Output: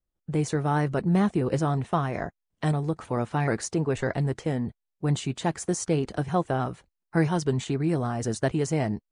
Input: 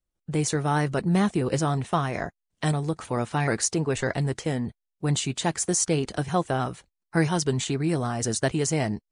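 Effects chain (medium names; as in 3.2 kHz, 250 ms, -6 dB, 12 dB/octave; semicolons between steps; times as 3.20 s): treble shelf 2.5 kHz -10 dB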